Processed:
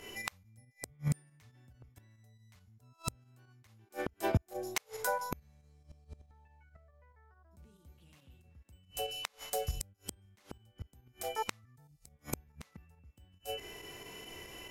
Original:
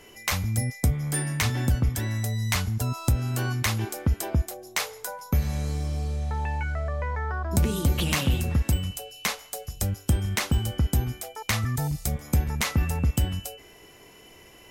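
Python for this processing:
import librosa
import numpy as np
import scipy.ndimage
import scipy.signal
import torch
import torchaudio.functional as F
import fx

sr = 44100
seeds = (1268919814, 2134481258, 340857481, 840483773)

y = fx.volume_shaper(x, sr, bpm=139, per_beat=2, depth_db=-8, release_ms=65.0, shape='fast start')
y = fx.hpss(y, sr, part='percussive', gain_db=-8)
y = fx.gate_flip(y, sr, shuts_db=-23.0, range_db=-38)
y = F.gain(torch.from_numpy(y), 4.5).numpy()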